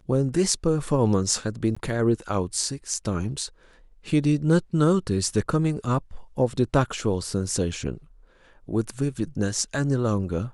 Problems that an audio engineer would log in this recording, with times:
0:01.75–0:01.76: drop-out 15 ms

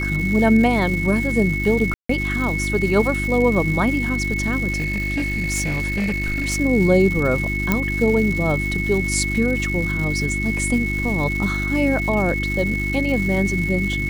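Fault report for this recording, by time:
surface crackle 380 per second −27 dBFS
mains hum 50 Hz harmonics 7 −25 dBFS
whistle 2,200 Hz −24 dBFS
0:01.94–0:02.09: drop-out 154 ms
0:04.72–0:06.58: clipping −18 dBFS
0:07.72: click −4 dBFS

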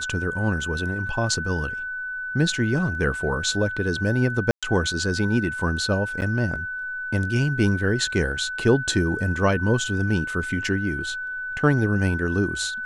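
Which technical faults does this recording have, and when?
whistle 1,500 Hz −28 dBFS
0:04.51–0:04.63: drop-out 116 ms
0:06.21–0:06.22: drop-out 9.3 ms

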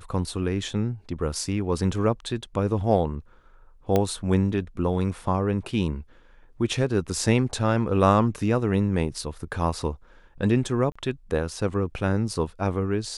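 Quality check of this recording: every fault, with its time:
0:03.96: click −9 dBFS
0:10.92–0:10.96: drop-out 35 ms

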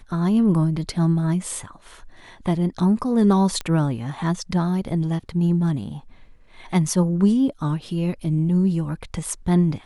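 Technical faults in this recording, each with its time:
0:03.61: click −14 dBFS

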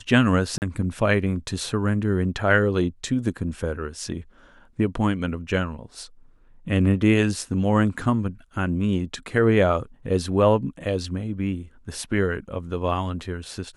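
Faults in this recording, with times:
0:00.58–0:00.62: drop-out 39 ms

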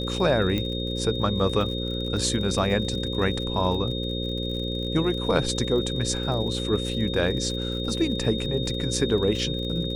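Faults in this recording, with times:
mains buzz 60 Hz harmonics 9 −30 dBFS
surface crackle 59 per second −34 dBFS
whistle 3,700 Hz −32 dBFS
0:00.58: click −14 dBFS

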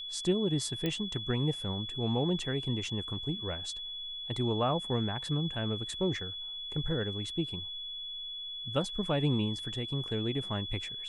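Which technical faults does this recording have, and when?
whistle 3,400 Hz −38 dBFS
0:00.86: click −19 dBFS

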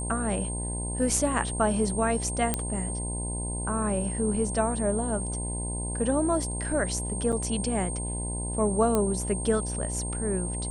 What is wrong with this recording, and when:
mains buzz 60 Hz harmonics 17 −33 dBFS
whistle 8,600 Hz −34 dBFS
0:02.54: click −10 dBFS
0:07.32–0:07.33: drop-out 6.4 ms
0:08.95: click −12 dBFS

